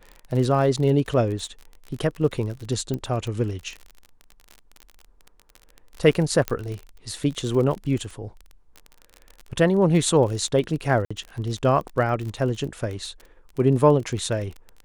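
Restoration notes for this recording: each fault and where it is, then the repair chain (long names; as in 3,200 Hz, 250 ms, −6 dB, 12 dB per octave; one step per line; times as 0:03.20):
surface crackle 36 per second −30 dBFS
0:02.94: click −16 dBFS
0:06.48: click −9 dBFS
0:11.05–0:11.11: drop-out 55 ms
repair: click removal
repair the gap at 0:11.05, 55 ms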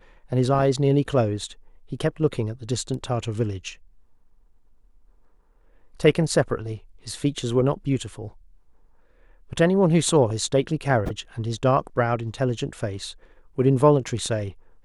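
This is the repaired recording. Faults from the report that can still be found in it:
0:02.94: click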